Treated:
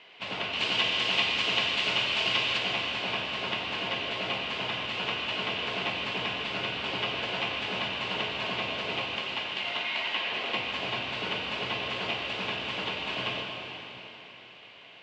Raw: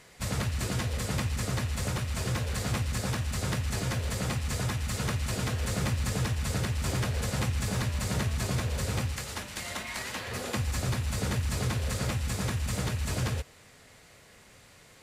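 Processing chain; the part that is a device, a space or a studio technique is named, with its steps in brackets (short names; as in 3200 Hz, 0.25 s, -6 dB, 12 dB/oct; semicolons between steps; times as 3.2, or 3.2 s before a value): 0.53–2.58 high shelf 2600 Hz +12 dB; phone earpiece (speaker cabinet 480–3300 Hz, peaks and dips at 510 Hz -8 dB, 820 Hz -3 dB, 1300 Hz -8 dB, 1800 Hz -9 dB, 2900 Hz +9 dB); plate-style reverb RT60 3.5 s, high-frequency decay 0.95×, DRR -0.5 dB; gain +5.5 dB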